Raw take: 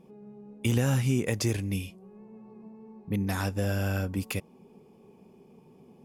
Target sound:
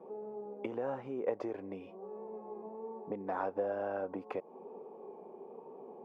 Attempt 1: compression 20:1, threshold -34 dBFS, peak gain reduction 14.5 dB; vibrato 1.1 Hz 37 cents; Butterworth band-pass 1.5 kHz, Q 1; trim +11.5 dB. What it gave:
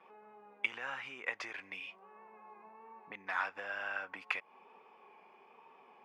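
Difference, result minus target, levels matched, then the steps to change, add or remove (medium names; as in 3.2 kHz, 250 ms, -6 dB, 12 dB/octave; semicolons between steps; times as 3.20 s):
500 Hz band -16.5 dB
change: Butterworth band-pass 660 Hz, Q 1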